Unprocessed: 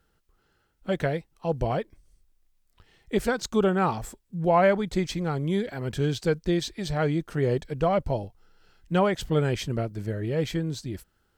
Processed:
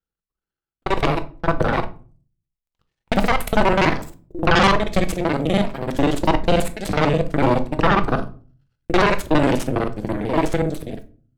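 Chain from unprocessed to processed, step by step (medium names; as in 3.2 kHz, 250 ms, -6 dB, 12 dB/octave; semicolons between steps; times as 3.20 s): time reversed locally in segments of 41 ms; Chebyshev shaper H 3 -10 dB, 4 -8 dB, 7 -37 dB, 8 -12 dB, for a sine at -9 dBFS; simulated room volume 270 m³, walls furnished, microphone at 0.68 m; trim +2.5 dB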